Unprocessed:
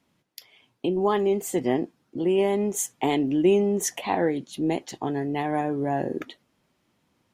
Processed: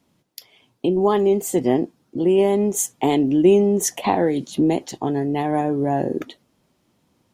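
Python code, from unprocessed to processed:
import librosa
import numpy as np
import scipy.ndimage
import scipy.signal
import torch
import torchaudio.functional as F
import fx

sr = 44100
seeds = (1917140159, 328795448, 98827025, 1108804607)

y = fx.peak_eq(x, sr, hz=1900.0, db=-6.0, octaves=1.8)
y = fx.band_squash(y, sr, depth_pct=100, at=(4.04, 4.88))
y = F.gain(torch.from_numpy(y), 6.0).numpy()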